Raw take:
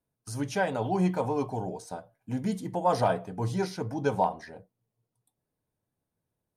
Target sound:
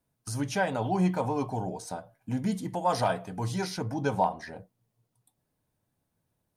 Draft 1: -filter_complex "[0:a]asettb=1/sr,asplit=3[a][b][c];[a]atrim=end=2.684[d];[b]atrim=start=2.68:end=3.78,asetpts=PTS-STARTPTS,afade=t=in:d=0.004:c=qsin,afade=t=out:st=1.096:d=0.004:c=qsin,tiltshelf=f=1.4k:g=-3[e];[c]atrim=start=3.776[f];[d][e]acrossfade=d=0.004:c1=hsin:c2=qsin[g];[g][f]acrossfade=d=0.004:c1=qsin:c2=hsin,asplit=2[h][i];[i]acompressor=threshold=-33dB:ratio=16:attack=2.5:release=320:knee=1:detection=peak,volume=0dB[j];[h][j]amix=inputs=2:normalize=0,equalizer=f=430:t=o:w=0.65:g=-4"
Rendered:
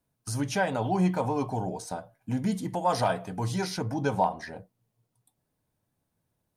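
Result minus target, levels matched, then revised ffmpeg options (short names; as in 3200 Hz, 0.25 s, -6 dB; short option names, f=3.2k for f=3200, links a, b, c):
compressor: peak gain reduction -6 dB
-filter_complex "[0:a]asettb=1/sr,asplit=3[a][b][c];[a]atrim=end=2.684[d];[b]atrim=start=2.68:end=3.78,asetpts=PTS-STARTPTS,afade=t=in:d=0.004:c=qsin,afade=t=out:st=1.096:d=0.004:c=qsin,tiltshelf=f=1.4k:g=-3[e];[c]atrim=start=3.776[f];[d][e]acrossfade=d=0.004:c1=hsin:c2=qsin[g];[g][f]acrossfade=d=0.004:c1=qsin:c2=hsin,asplit=2[h][i];[i]acompressor=threshold=-39.5dB:ratio=16:attack=2.5:release=320:knee=1:detection=peak,volume=0dB[j];[h][j]amix=inputs=2:normalize=0,equalizer=f=430:t=o:w=0.65:g=-4"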